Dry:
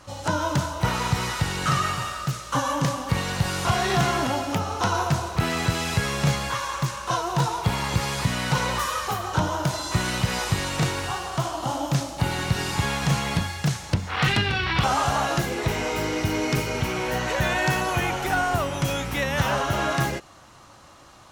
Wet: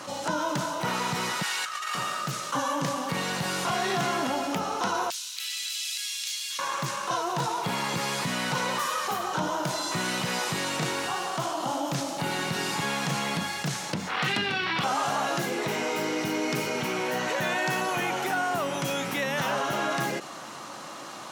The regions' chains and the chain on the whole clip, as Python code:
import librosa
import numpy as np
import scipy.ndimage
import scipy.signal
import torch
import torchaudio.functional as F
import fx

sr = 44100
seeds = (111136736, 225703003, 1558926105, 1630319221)

y = fx.chain(x, sr, fx.highpass(hz=1100.0, slope=12),
    fx.over_compress(threshold_db=-31.0, ratio=-0.5), at=(1.42, 1.95))
y = fx.chain(y, sr, fx.ladder_highpass(hz=2600.0, resonance_pct=30),
    fx.high_shelf(hz=4800.0, db=7.0), at=(5.1, 6.59))
y = scipy.signal.sosfilt(scipy.signal.butter(4, 170.0, 'highpass', fs=sr, output='sos'), y)
y = fx.env_flatten(y, sr, amount_pct=50)
y = y * librosa.db_to_amplitude(-5.0)